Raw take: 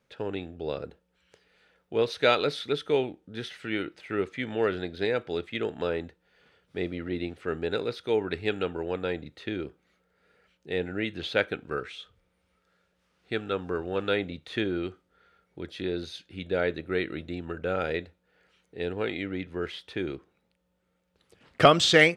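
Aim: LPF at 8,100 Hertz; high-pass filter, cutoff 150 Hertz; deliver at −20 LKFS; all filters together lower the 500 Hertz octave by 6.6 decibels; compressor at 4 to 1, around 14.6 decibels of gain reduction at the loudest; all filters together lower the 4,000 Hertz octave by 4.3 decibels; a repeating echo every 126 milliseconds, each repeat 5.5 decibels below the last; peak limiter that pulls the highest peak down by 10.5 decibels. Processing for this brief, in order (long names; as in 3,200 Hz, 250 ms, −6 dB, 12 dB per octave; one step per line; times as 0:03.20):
high-pass filter 150 Hz
low-pass filter 8,100 Hz
parametric band 500 Hz −8 dB
parametric band 4,000 Hz −5 dB
downward compressor 4 to 1, threshold −33 dBFS
brickwall limiter −27 dBFS
repeating echo 126 ms, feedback 53%, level −5.5 dB
level +20 dB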